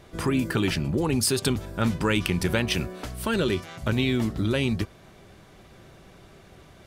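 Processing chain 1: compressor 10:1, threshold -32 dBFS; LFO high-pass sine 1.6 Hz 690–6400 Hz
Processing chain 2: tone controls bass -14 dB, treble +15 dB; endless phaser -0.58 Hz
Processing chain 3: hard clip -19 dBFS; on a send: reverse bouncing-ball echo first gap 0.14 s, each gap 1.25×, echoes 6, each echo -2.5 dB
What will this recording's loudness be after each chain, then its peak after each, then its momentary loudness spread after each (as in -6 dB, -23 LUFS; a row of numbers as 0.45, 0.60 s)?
-40.0, -26.0, -23.5 LUFS; -16.5, -2.0, -10.5 dBFS; 17, 15, 14 LU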